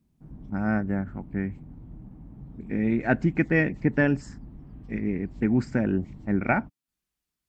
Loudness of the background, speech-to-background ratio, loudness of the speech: -45.5 LUFS, 19.0 dB, -26.5 LUFS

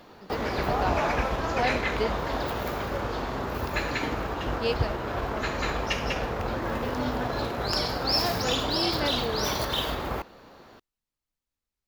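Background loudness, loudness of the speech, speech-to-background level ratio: -28.5 LUFS, -33.5 LUFS, -5.0 dB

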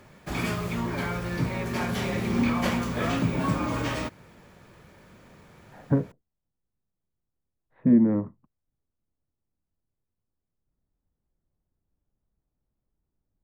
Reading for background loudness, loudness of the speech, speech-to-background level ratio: -28.5 LUFS, -24.0 LUFS, 4.5 dB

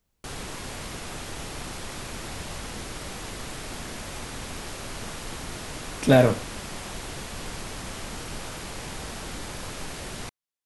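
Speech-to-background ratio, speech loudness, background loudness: 15.5 dB, -20.5 LUFS, -36.0 LUFS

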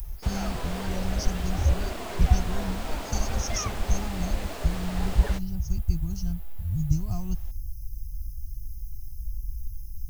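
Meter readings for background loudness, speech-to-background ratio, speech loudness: -36.5 LUFS, 5.5 dB, -31.0 LUFS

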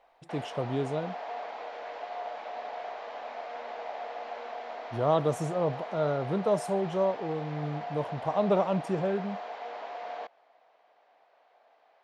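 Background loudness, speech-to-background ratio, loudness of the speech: -39.5 LUFS, 9.0 dB, -30.5 LUFS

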